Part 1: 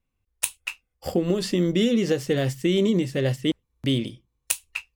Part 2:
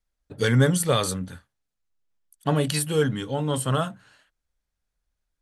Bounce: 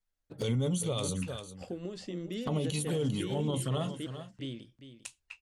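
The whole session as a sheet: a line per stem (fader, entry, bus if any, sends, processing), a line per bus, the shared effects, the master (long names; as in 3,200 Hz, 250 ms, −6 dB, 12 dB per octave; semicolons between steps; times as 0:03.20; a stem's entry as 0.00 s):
−16.5 dB, 0.55 s, no send, echo send −12 dB, low-pass filter 8,600 Hz 24 dB per octave
−3.0 dB, 0.00 s, no send, echo send −14.5 dB, flanger swept by the level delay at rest 10.2 ms, full sweep at −22 dBFS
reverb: not used
echo: single-tap delay 399 ms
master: brickwall limiter −23 dBFS, peak gain reduction 11 dB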